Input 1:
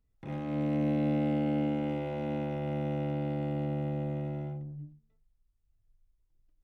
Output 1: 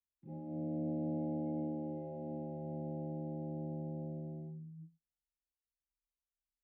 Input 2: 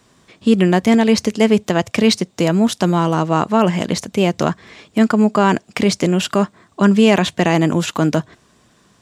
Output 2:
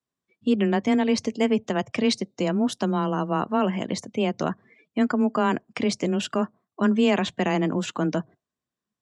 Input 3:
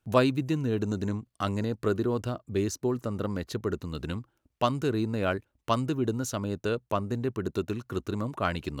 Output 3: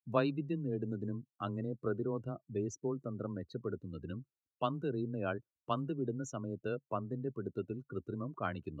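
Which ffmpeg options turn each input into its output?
-af "afftdn=nr=27:nf=-34,afreqshift=14,volume=-8.5dB"

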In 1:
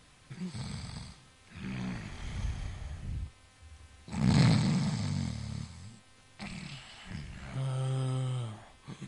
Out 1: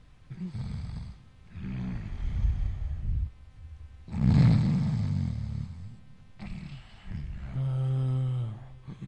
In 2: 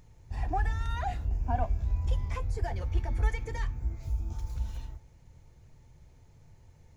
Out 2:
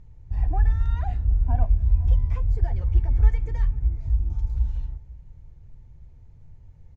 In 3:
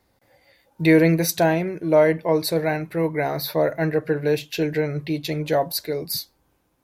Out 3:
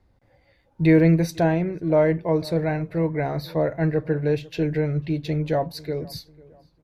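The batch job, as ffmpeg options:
-filter_complex "[0:a]aemphasis=mode=reproduction:type=bsi,asplit=2[a][b];[b]adelay=496,lowpass=f=1.8k:p=1,volume=-22dB,asplit=2[c][d];[d]adelay=496,lowpass=f=1.8k:p=1,volume=0.39,asplit=2[e][f];[f]adelay=496,lowpass=f=1.8k:p=1,volume=0.39[g];[a][c][e][g]amix=inputs=4:normalize=0,volume=-4dB"

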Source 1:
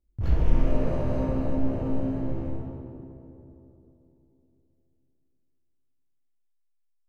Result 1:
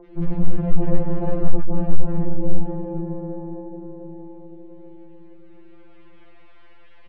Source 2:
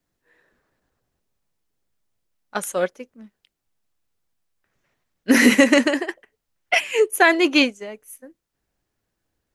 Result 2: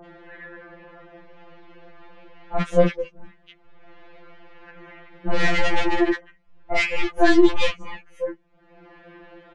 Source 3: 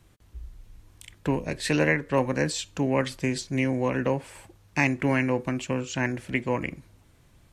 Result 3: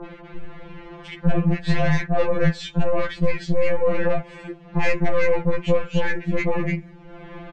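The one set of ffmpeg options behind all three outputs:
-filter_complex "[0:a]bass=f=250:g=10,treble=f=4k:g=-13,acrossover=split=300|3600[a][b][c];[b]acompressor=mode=upward:threshold=-33dB:ratio=2.5[d];[a][d][c]amix=inputs=3:normalize=0,aeval=exprs='(tanh(12.6*val(0)+0.45)-tanh(0.45))/12.6':c=same,acrossover=split=1100[e][f];[f]adelay=50[g];[e][g]amix=inputs=2:normalize=0,asplit=2[h][i];[i]acompressor=threshold=-32dB:ratio=6,volume=-0.5dB[j];[h][j]amix=inputs=2:normalize=0,lowpass=f=8k:w=0.5412,lowpass=f=8k:w=1.3066,aemphasis=mode=reproduction:type=50kf,afftfilt=real='re*2.83*eq(mod(b,8),0)':imag='im*2.83*eq(mod(b,8),0)':win_size=2048:overlap=0.75,volume=7.5dB"

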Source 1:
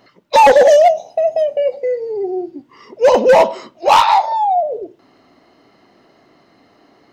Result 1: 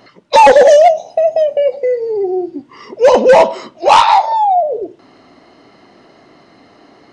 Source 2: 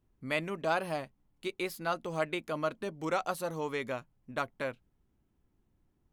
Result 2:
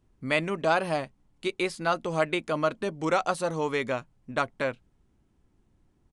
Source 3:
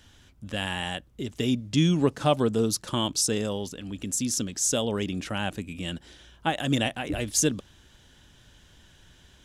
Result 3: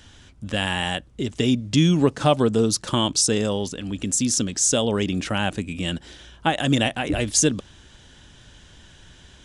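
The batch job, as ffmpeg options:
-filter_complex "[0:a]asplit=2[a][b];[b]acompressor=threshold=-25dB:ratio=6,volume=-1.5dB[c];[a][c]amix=inputs=2:normalize=0,aresample=22050,aresample=44100,volume=1.5dB"

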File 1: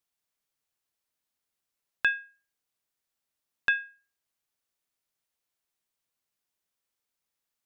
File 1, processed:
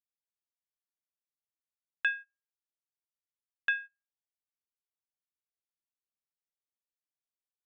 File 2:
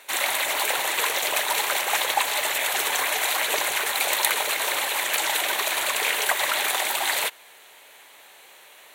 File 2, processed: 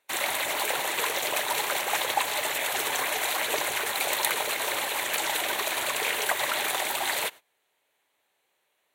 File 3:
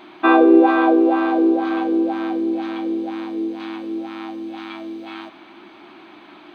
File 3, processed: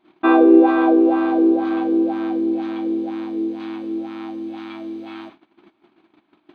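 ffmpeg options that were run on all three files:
-af "lowshelf=f=410:g=9,agate=range=-21dB:threshold=-36dB:ratio=16:detection=peak,volume=-4.5dB"

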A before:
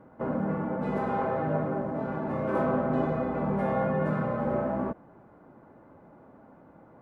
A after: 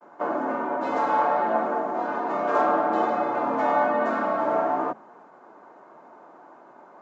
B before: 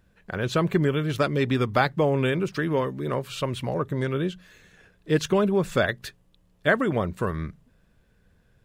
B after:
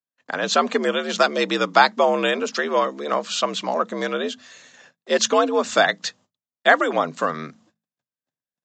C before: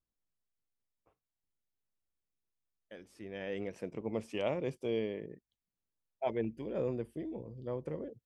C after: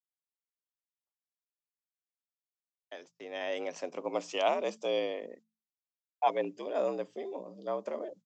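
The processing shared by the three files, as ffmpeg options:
-filter_complex "[0:a]agate=range=-40dB:threshold=-55dB:ratio=16:detection=peak,highpass=47,equalizer=f=970:w=0.47:g=15,bandreject=f=50:t=h:w=6,bandreject=f=100:t=h:w=6,bandreject=f=150:t=h:w=6,afreqshift=70,acrossover=split=2900[a][b];[b]crystalizer=i=9:c=0[c];[a][c]amix=inputs=2:normalize=0,aresample=16000,aresample=44100,volume=-5.5dB"

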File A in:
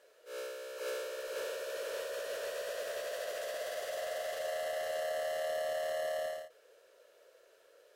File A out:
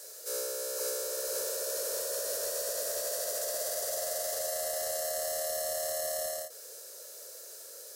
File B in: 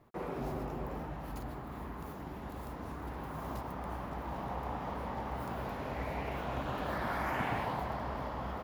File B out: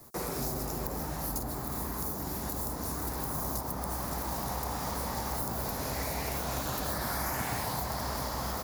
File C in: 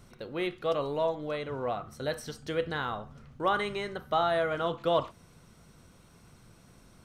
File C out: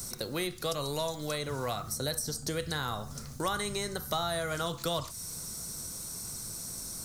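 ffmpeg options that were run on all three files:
-filter_complex "[0:a]aexciter=amount=11.9:drive=3.1:freq=4.4k,acrossover=split=150|1300[a][b][c];[a]acompressor=threshold=-45dB:ratio=4[d];[b]acompressor=threshold=-44dB:ratio=4[e];[c]acompressor=threshold=-43dB:ratio=4[f];[d][e][f]amix=inputs=3:normalize=0,volume=7.5dB"

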